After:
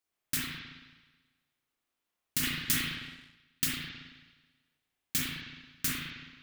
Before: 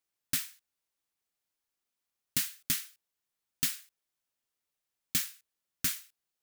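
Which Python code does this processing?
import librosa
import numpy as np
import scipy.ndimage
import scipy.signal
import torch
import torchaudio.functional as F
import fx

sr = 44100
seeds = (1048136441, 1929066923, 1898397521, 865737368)

y = fx.rev_spring(x, sr, rt60_s=1.3, pass_ms=(35, 54), chirp_ms=55, drr_db=-6.0)
y = fx.leveller(y, sr, passes=1, at=(2.43, 3.64))
y = F.gain(torch.from_numpy(y), -1.5).numpy()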